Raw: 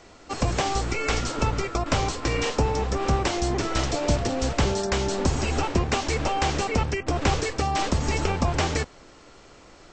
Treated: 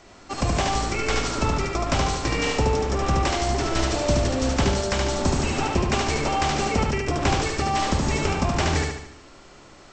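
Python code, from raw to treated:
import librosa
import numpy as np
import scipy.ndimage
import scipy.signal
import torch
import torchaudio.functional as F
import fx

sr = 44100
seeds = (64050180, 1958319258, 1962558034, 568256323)

p1 = fx.notch(x, sr, hz=480.0, q=12.0)
y = p1 + fx.echo_feedback(p1, sr, ms=73, feedback_pct=50, wet_db=-3, dry=0)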